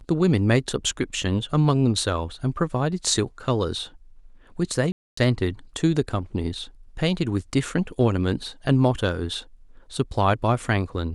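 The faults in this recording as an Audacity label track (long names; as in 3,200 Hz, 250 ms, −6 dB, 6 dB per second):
4.920000	5.170000	drop-out 254 ms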